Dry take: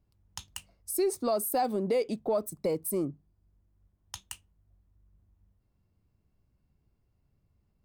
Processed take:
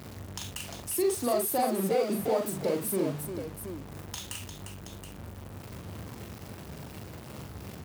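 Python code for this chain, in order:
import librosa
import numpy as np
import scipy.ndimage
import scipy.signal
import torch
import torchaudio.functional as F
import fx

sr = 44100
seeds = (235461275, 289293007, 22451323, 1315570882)

y = x + 0.5 * 10.0 ** (-33.5 / 20.0) * np.sign(x)
y = scipy.signal.sosfilt(scipy.signal.butter(4, 74.0, 'highpass', fs=sr, output='sos'), y)
y = fx.echo_multitap(y, sr, ms=(41, 351, 724), db=(-4.0, -7.5, -9.5))
y = F.gain(torch.from_numpy(y), -2.5).numpy()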